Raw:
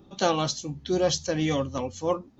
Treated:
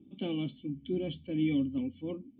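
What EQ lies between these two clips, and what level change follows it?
formant resonators in series i
high-pass filter 72 Hz
+4.0 dB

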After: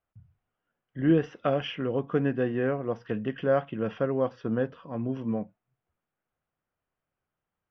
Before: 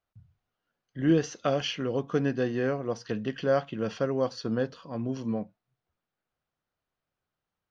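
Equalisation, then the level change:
Savitzky-Golay smoothing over 25 samples
high-frequency loss of the air 94 metres
+1.0 dB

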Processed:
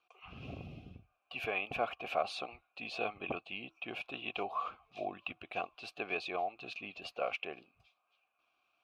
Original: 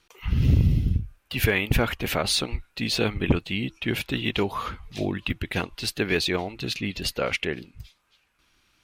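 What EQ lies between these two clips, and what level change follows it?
formant filter a
+2.0 dB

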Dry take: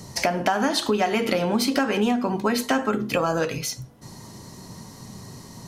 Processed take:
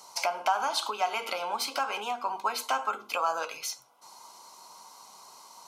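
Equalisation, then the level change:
high-pass with resonance 930 Hz, resonance Q 2
Butterworth band-reject 1,800 Hz, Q 3.6
−5.5 dB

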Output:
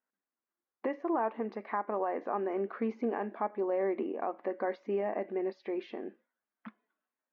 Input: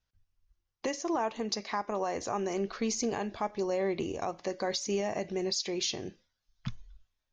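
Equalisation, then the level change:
linear-phase brick-wall high-pass 200 Hz
low-pass filter 1,900 Hz 24 dB per octave
0.0 dB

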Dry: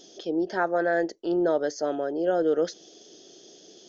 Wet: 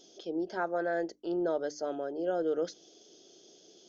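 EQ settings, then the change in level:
mains-hum notches 50/100/150/200/250/300 Hz
notch filter 1,800 Hz, Q 8.3
−7.0 dB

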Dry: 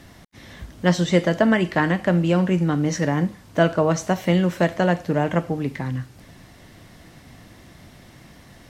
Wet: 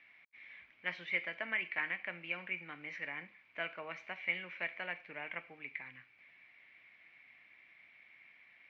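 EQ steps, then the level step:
resonant band-pass 2,300 Hz, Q 13
high-frequency loss of the air 260 metres
+7.5 dB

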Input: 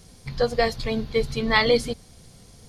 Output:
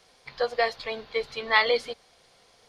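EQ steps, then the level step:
three-way crossover with the lows and the highs turned down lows −24 dB, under 460 Hz, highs −15 dB, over 4,500 Hz
0.0 dB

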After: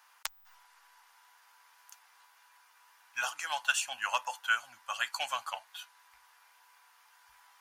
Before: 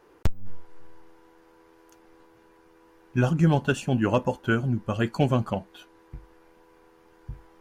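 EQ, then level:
inverse Chebyshev high-pass filter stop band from 430 Hz, stop band 40 dB
high-shelf EQ 2,800 Hz +10.5 dB
−2.0 dB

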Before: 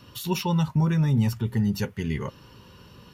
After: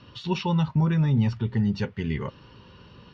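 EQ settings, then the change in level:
inverse Chebyshev low-pass filter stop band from 12,000 Hz, stop band 60 dB
0.0 dB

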